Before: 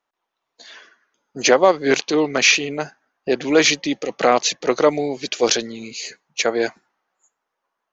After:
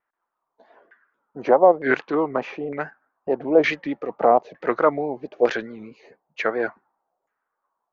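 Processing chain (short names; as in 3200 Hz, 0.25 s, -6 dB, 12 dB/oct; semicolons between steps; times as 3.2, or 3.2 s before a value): vibrato 4.6 Hz 80 cents; LFO low-pass saw down 1.1 Hz 620–1900 Hz; gain -5 dB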